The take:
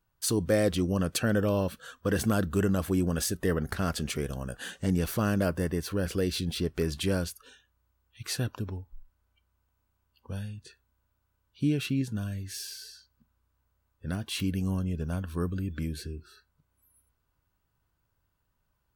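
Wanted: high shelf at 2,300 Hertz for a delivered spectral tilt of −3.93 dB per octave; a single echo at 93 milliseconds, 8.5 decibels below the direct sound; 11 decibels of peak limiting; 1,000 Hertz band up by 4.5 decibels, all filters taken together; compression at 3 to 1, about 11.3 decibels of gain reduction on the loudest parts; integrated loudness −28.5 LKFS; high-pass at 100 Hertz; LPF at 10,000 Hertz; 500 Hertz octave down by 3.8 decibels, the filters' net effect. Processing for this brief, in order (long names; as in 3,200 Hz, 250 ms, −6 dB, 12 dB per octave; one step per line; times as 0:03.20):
high-pass filter 100 Hz
low-pass filter 10,000 Hz
parametric band 500 Hz −6.5 dB
parametric band 1,000 Hz +6 dB
high-shelf EQ 2,300 Hz +7.5 dB
downward compressor 3 to 1, threshold −36 dBFS
brickwall limiter −31.5 dBFS
single-tap delay 93 ms −8.5 dB
level +13 dB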